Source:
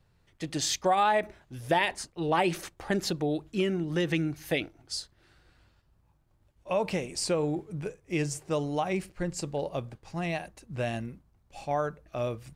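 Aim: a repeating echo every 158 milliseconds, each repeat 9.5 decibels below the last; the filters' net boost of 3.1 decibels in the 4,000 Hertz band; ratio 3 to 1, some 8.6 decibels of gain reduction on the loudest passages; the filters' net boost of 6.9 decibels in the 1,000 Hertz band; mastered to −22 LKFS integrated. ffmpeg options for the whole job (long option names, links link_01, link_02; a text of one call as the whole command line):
ffmpeg -i in.wav -af "equalizer=frequency=1000:width_type=o:gain=9,equalizer=frequency=4000:width_type=o:gain=3.5,acompressor=threshold=-26dB:ratio=3,aecho=1:1:158|316|474|632:0.335|0.111|0.0365|0.012,volume=9.5dB" out.wav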